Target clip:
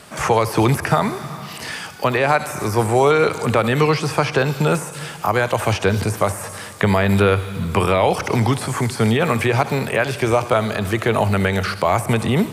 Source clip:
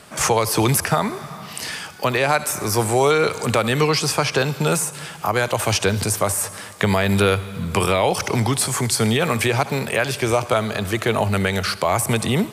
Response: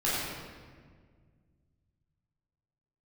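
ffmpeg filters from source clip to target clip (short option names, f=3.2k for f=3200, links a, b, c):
-filter_complex "[0:a]acrossover=split=2600[a][b];[b]acompressor=threshold=-33dB:ratio=4:attack=1:release=60[c];[a][c]amix=inputs=2:normalize=0,asplit=2[d][e];[1:a]atrim=start_sample=2205[f];[e][f]afir=irnorm=-1:irlink=0,volume=-28.5dB[g];[d][g]amix=inputs=2:normalize=0,volume=2dB"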